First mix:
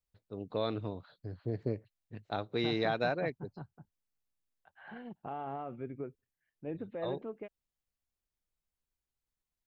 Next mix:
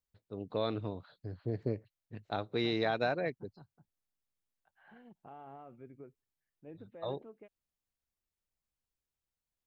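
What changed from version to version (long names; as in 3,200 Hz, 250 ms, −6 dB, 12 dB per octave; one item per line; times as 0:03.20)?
second voice −10.5 dB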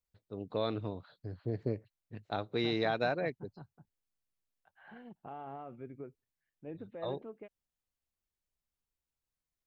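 second voice +5.5 dB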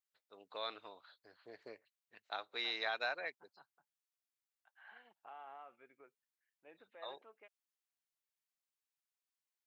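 master: add high-pass filter 1,100 Hz 12 dB per octave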